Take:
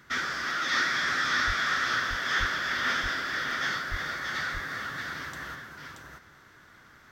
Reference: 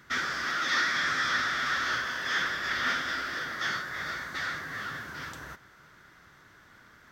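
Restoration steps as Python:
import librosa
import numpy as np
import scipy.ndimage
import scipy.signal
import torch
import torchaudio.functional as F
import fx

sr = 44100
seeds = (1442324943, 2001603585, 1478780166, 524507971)

y = fx.fix_deplosive(x, sr, at_s=(1.46, 2.39, 3.9))
y = fx.fix_interpolate(y, sr, at_s=(3.51,), length_ms=2.0)
y = fx.fix_echo_inverse(y, sr, delay_ms=629, level_db=-4.5)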